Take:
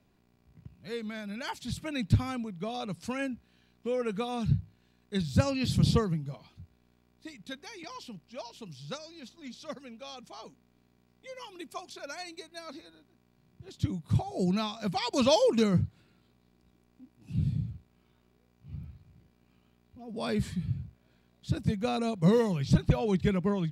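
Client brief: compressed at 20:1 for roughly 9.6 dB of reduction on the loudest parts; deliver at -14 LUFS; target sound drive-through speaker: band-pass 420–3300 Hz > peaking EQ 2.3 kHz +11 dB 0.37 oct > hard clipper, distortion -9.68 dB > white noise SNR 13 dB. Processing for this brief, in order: compression 20:1, threshold -27 dBFS; band-pass 420–3300 Hz; peaking EQ 2.3 kHz +11 dB 0.37 oct; hard clipper -34.5 dBFS; white noise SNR 13 dB; trim +28 dB

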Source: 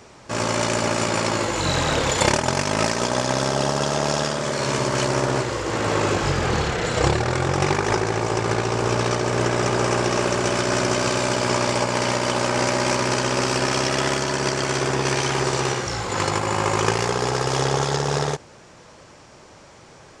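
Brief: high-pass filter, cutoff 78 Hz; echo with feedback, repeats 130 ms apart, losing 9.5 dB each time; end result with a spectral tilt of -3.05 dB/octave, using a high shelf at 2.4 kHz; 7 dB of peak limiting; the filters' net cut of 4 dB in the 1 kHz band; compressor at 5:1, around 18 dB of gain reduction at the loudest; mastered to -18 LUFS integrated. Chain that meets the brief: high-pass 78 Hz; peaking EQ 1 kHz -6 dB; treble shelf 2.4 kHz +5.5 dB; compression 5:1, threshold -35 dBFS; peak limiter -27 dBFS; feedback delay 130 ms, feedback 33%, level -9.5 dB; trim +19 dB

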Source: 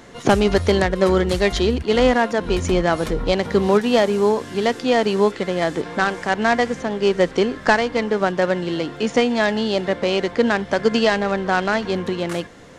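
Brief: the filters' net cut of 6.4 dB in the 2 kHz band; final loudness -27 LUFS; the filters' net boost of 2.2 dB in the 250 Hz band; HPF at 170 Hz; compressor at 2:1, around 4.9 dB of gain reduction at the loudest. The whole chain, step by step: high-pass 170 Hz; peaking EQ 250 Hz +4.5 dB; peaking EQ 2 kHz -8.5 dB; compression 2:1, threshold -19 dBFS; trim -4.5 dB

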